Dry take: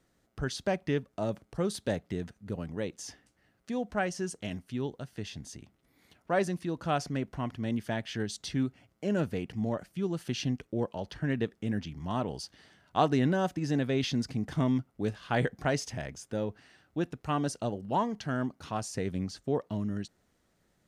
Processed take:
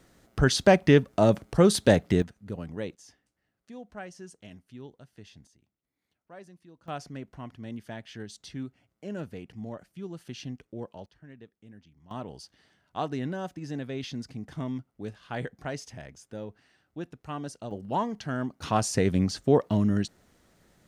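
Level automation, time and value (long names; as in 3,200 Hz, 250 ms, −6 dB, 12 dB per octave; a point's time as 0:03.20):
+11.5 dB
from 0:02.22 0 dB
from 0:02.95 −10.5 dB
from 0:05.47 −19.5 dB
from 0:06.88 −7 dB
from 0:11.06 −19 dB
from 0:12.11 −6 dB
from 0:17.71 +0.5 dB
from 0:18.62 +9 dB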